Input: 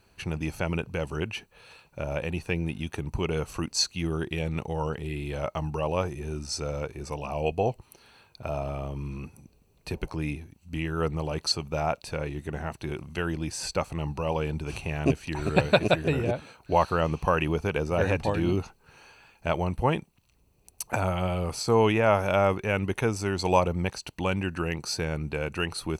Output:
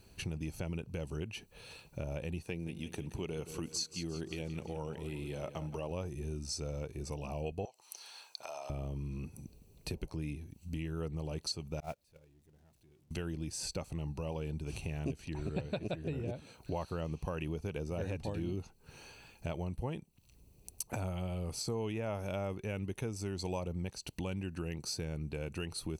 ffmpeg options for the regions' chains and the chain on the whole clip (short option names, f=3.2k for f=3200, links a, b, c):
-filter_complex "[0:a]asettb=1/sr,asplit=3[a][b][c];[a]atrim=end=2.424[d];[b]atrim=start=2.42:end=5.91,asetpts=PTS-STARTPTS,afade=t=in:d=0.004:c=qsin,afade=t=out:st=3.486:d=0.004:c=qsin,highpass=f=180:p=1,aecho=1:1:174|348|522|696|870:0.237|0.114|0.0546|0.0262|0.0126,atrim=end_sample=153909[e];[c]atrim=start=5.906[f];[d][e]acrossfade=d=0.004:c1=hsin:c2=qsin[g];[g][f]acrossfade=d=0.004:c1=qsin:c2=hsin,asettb=1/sr,asplit=3[h][i][j];[h]atrim=end=7.654[k];[i]atrim=start=7.65:end=8.7,asetpts=PTS-STARTPTS,afade=t=in:d=0.004:c=qsin,afade=t=out:st=1.046:d=0.004:c=qsin,acompressor=threshold=-37dB:ratio=2.5:attack=3.2:release=140:knee=1:detection=peak,highpass=f=870:t=q:w=1.7,equalizer=f=6k:w=0.99:g=10.5[l];[j]atrim=start=8.696[m];[k][l]acrossfade=d=0.004:c1=hsin:c2=qsin[n];[n][m]acrossfade=d=0.004:c1=qsin:c2=hsin,asettb=1/sr,asplit=3[o][p][q];[o]atrim=end=11.804[r];[p]atrim=start=11.8:end=13.11,asetpts=PTS-STARTPTS,afade=t=in:d=0.004:c=qsin,afade=t=out:st=1.306:d=0.004:c=qsin,aeval=exprs='val(0)+0.5*0.0224*sgn(val(0))':c=same,agate=range=-37dB:threshold=-24dB:ratio=16:release=100:detection=peak[s];[q]atrim=start=13.106[t];[r][s]acrossfade=d=0.004:c1=hsin:c2=qsin[u];[u][t]acrossfade=d=0.004:c1=qsin:c2=hsin,asettb=1/sr,asplit=3[v][w][x];[v]atrim=end=15.194[y];[w]atrim=start=15.19:end=16.28,asetpts=PTS-STARTPTS,afade=t=in:d=0.004:c=qsin,afade=t=out:st=1.086:d=0.004:c=qsin,highshelf=f=5.1k:g=-9,acompressor=mode=upward:threshold=-32dB:ratio=2.5:attack=3.2:release=140:knee=2.83:detection=peak[z];[x]atrim=start=16.276[aa];[y][z]acrossfade=d=0.004:c1=hsin:c2=qsin[ab];[ab][aa]acrossfade=d=0.004:c1=qsin:c2=hsin,equalizer=f=1.3k:w=0.57:g=-10.5,acompressor=threshold=-44dB:ratio=3,volume=4.5dB"